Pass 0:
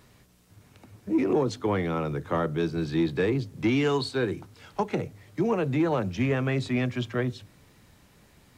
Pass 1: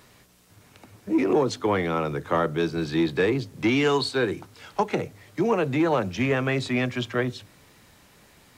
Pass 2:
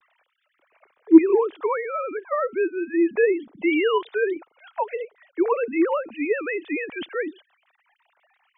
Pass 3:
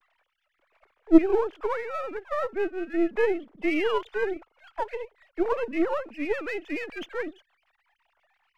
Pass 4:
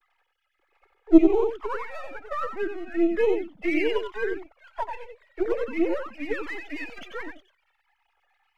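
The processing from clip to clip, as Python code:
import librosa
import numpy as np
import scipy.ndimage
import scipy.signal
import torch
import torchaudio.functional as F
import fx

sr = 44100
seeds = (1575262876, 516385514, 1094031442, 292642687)

y1 = fx.low_shelf(x, sr, hz=280.0, db=-8.0)
y1 = F.gain(torch.from_numpy(y1), 5.5).numpy()
y2 = fx.sine_speech(y1, sr)
y2 = F.gain(torch.from_numpy(y2), 2.0).numpy()
y3 = np.where(y2 < 0.0, 10.0 ** (-7.0 / 20.0) * y2, y2)
y3 = F.gain(torch.from_numpy(y3), -2.0).numpy()
y4 = y3 + 10.0 ** (-6.5 / 20.0) * np.pad(y3, (int(92 * sr / 1000.0), 0))[:len(y3)]
y4 = fx.env_flanger(y4, sr, rest_ms=2.4, full_db=-18.0)
y4 = F.gain(torch.from_numpy(y4), 2.0).numpy()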